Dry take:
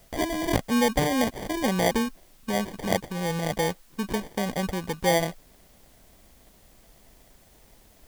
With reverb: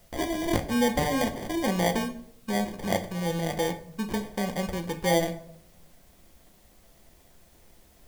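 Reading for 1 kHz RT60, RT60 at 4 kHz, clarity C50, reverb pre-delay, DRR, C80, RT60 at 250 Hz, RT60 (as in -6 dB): 0.55 s, 0.45 s, 13.0 dB, 6 ms, 6.0 dB, 16.5 dB, 0.85 s, 0.65 s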